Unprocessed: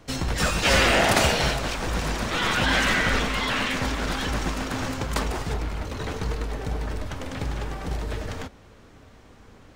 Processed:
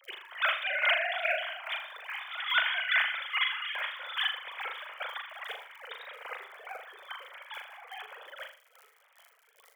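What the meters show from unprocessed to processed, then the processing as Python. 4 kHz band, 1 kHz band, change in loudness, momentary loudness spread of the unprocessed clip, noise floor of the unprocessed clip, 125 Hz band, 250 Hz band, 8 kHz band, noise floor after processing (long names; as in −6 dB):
−6.0 dB, −9.5 dB, −6.0 dB, 13 LU, −51 dBFS, below −40 dB, below −40 dB, below −30 dB, −65 dBFS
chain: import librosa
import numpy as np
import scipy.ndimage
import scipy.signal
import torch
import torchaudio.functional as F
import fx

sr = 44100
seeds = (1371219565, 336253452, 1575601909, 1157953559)

y = fx.sine_speech(x, sr)
y = fx.dmg_crackle(y, sr, seeds[0], per_s=71.0, level_db=-49.0)
y = fx.chopper(y, sr, hz=2.4, depth_pct=60, duty_pct=25)
y = np.diff(y, prepend=0.0)
y = fx.notch(y, sr, hz=2700.0, q=9.9)
y = fx.room_flutter(y, sr, wall_m=6.8, rt60_s=0.42)
y = fx.rider(y, sr, range_db=3, speed_s=2.0)
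y = scipy.signal.sosfilt(scipy.signal.butter(2, 380.0, 'highpass', fs=sr, output='sos'), y)
y = y * librosa.db_to_amplitude(7.0)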